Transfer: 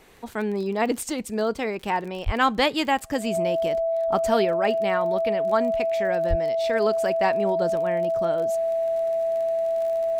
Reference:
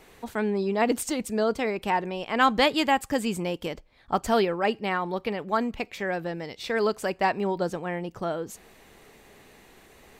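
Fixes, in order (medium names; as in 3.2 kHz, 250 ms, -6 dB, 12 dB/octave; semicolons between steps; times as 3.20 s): de-click; band-stop 660 Hz, Q 30; de-plosive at 2.25/6.29 s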